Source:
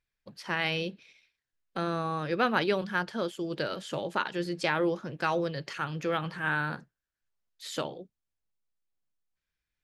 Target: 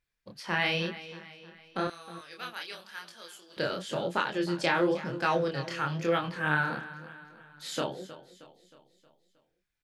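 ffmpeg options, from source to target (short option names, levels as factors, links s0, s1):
-filter_complex "[0:a]asettb=1/sr,asplit=3[s0][s1][s2];[s0]atrim=end=1.874[s3];[s1]atrim=start=1.87:end=3.57,asetpts=PTS-STARTPTS,afade=t=in:d=0.004:c=qsin,afade=t=out:st=1.696:d=0.004:c=qsin,aderivative[s4];[s2]atrim=start=3.566[s5];[s3][s4]acrossfade=d=0.004:c1=hsin:c2=qsin[s6];[s6][s5]acrossfade=d=0.004:c1=qsin:c2=hsin,aecho=1:1:314|628|942|1256|1570:0.168|0.0856|0.0437|0.0223|0.0114,flanger=delay=22.5:depth=7.3:speed=0.96,volume=1.68"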